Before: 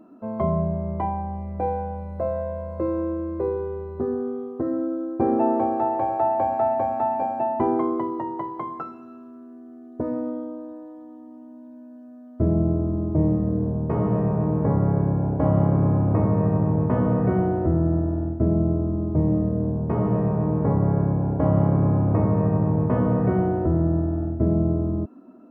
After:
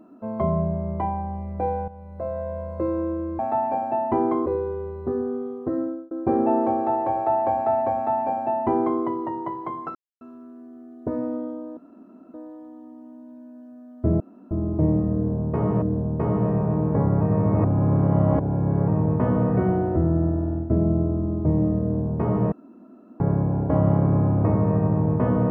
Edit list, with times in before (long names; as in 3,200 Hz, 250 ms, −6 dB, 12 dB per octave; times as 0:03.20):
0:01.88–0:02.59: fade in, from −12.5 dB
0:04.73–0:05.04: fade out
0:06.87–0:07.94: duplicate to 0:03.39
0:08.88–0:09.14: silence
0:10.70: splice in room tone 0.57 s
0:12.56–0:12.87: fill with room tone
0:13.52–0:14.18: repeat, 2 plays
0:14.91–0:16.58: reverse
0:20.22–0:20.90: fill with room tone